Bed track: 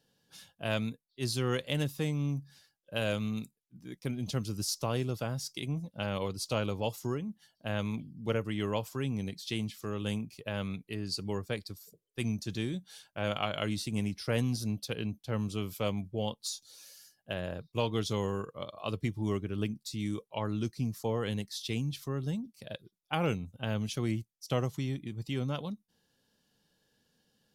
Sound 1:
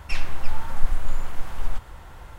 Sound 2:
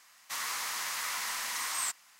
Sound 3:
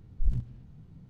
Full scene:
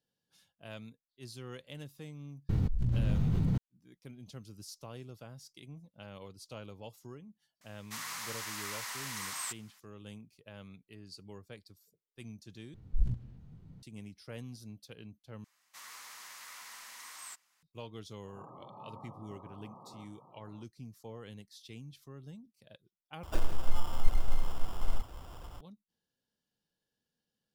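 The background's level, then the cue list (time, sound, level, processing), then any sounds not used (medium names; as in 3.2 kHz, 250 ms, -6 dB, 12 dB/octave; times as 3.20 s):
bed track -14.5 dB
2.49 s: add 3 -10 dB + level flattener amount 100%
7.61 s: add 2 -5.5 dB
12.74 s: replace with 3 -2.5 dB
15.44 s: replace with 2 -14 dB
18.26 s: add 1 -10 dB + FFT band-pass 110–1300 Hz
23.23 s: replace with 1 -5 dB + sample-and-hold 21×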